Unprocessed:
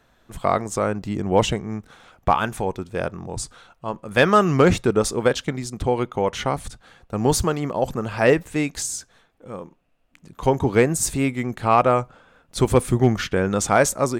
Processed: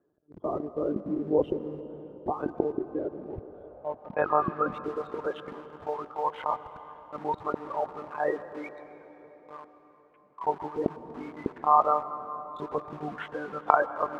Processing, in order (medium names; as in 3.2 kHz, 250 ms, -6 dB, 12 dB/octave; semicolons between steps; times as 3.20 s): spectral gate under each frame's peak -15 dB strong; monotone LPC vocoder at 8 kHz 150 Hz; in parallel at -4 dB: bit crusher 5-bit; 2.78–4.72 s: on the sum: distance through air 180 m; on a send at -12 dB: reverberation RT60 4.3 s, pre-delay 106 ms; on the sum: band-pass sweep 350 Hz -> 1 kHz, 3.34–4.40 s; trim -4 dB